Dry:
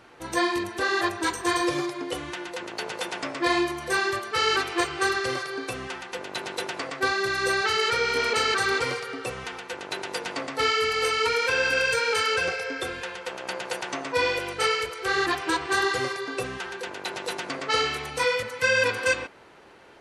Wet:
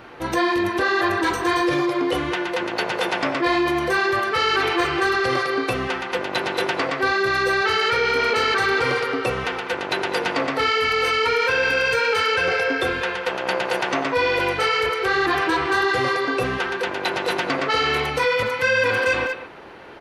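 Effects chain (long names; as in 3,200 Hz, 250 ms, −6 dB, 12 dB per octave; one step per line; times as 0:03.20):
soft clipping −11.5 dBFS, distortion −27 dB
parametric band 8,100 Hz −12.5 dB 1.2 octaves
hum removal 437.5 Hz, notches 30
far-end echo of a speakerphone 200 ms, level −12 dB
in parallel at 0 dB: compressor whose output falls as the input rises −31 dBFS, ratio −1
on the sum: level +2.5 dB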